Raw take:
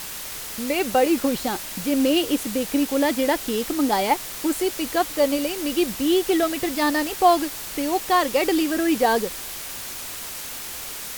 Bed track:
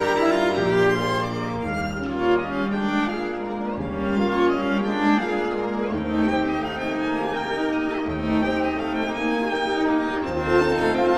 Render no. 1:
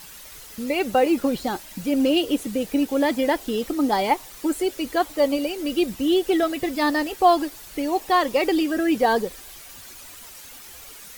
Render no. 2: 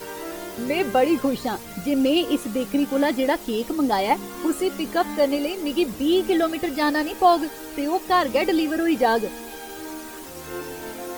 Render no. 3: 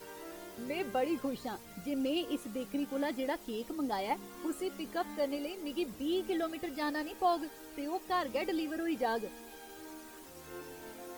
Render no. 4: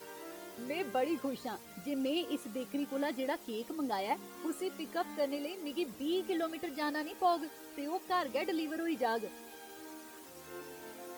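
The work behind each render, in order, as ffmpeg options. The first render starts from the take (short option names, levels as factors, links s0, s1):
-af "afftdn=nr=11:nf=-34"
-filter_complex "[1:a]volume=0.188[s0];[0:a][s0]amix=inputs=2:normalize=0"
-af "volume=0.211"
-af "highpass=f=160:p=1"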